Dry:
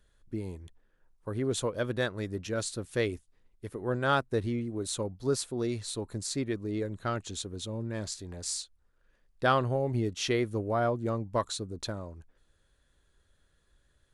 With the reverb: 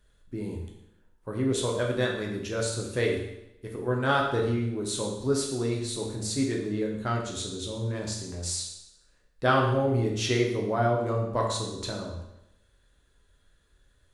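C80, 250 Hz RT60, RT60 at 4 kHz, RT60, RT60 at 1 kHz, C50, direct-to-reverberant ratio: 6.5 dB, 0.90 s, 0.85 s, 0.85 s, 0.85 s, 4.0 dB, -1.5 dB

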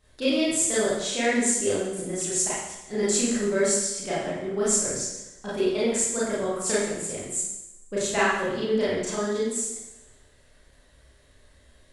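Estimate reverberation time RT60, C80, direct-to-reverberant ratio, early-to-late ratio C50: 0.90 s, 2.5 dB, -9.5 dB, -0.5 dB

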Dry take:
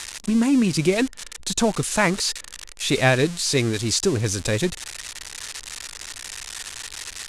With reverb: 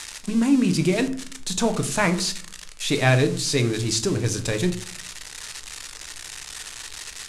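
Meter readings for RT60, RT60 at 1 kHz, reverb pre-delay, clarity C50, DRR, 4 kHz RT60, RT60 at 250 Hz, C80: 0.50 s, 0.45 s, 6 ms, 13.5 dB, 7.0 dB, 0.30 s, 0.75 s, 17.5 dB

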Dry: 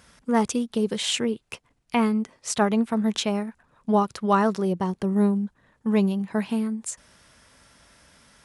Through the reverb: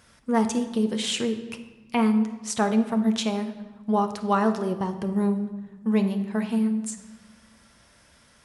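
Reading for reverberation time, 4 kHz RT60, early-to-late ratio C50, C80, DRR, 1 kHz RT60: 1.2 s, 0.90 s, 10.0 dB, 12.5 dB, 6.5 dB, 1.2 s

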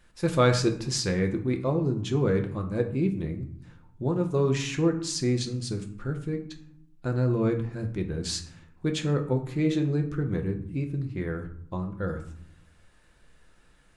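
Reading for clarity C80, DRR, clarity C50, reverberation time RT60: 14.0 dB, 4.0 dB, 10.5 dB, 0.70 s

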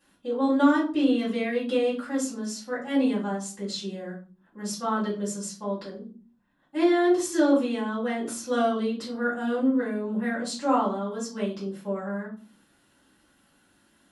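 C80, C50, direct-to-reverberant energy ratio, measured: 13.5 dB, 7.5 dB, -8.0 dB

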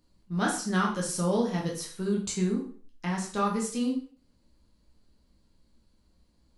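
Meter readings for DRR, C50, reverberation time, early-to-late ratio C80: -2.5 dB, 6.5 dB, 0.45 s, 11.0 dB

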